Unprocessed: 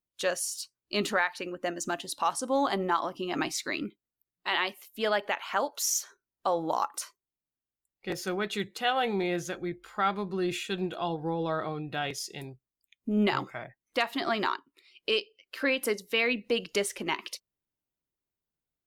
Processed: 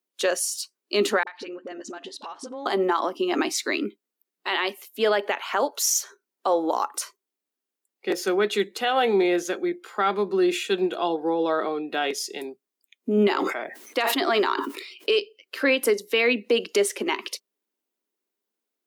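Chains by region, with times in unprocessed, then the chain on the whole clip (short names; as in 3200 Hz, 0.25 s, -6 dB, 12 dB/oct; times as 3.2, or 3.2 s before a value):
1.23–2.66 LPF 4600 Hz + compressor 5:1, threshold -41 dBFS + dispersion highs, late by 43 ms, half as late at 410 Hz
13.28–15.19 bell 210 Hz -8.5 dB 0.28 oct + sustainer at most 54 dB/s
whole clip: steep high-pass 210 Hz 48 dB/oct; bell 410 Hz +6.5 dB 0.42 oct; limiter -18 dBFS; gain +6 dB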